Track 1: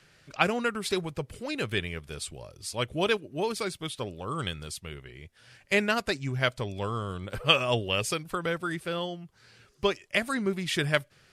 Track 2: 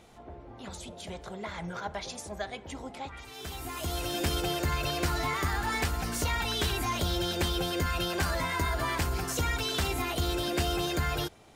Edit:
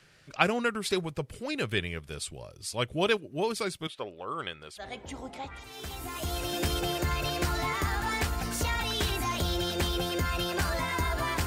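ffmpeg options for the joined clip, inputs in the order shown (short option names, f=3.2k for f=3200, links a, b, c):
-filter_complex "[0:a]asettb=1/sr,asplit=3[a][b][c];[a]atrim=end=3.874[d];[b]atrim=start=3.87:end=4.88,asetpts=PTS-STARTPTS,afade=t=in:d=0.004:c=qsin,afade=t=out:st=1.006:d=0.004:c=qsin,bass=f=250:g=-15,treble=f=4k:g=-13[e];[c]atrim=start=4.876[f];[d][e]acrossfade=d=0.004:c1=hsin:c2=qsin[g];[g][f]acrossfade=d=0.004:c1=qsin:c2=hsin,apad=whole_dur=11.46,atrim=end=11.46,atrim=end=4.88,asetpts=PTS-STARTPTS[h];[1:a]atrim=start=2.37:end=9.07,asetpts=PTS-STARTPTS[i];[h][i]acrossfade=d=0.12:c1=tri:c2=tri"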